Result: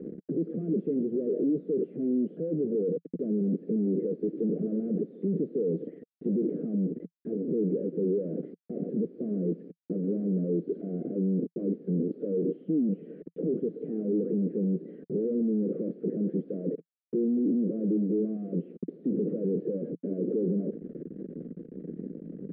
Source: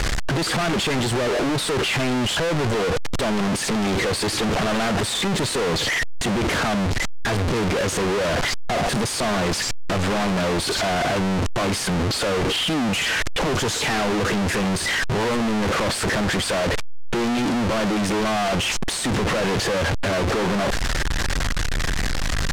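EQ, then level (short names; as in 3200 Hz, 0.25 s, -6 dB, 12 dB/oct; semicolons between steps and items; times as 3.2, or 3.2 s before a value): elliptic band-pass 170–470 Hz, stop band 40 dB; dynamic EQ 320 Hz, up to +4 dB, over -38 dBFS, Q 1.1; air absorption 430 m; -5.0 dB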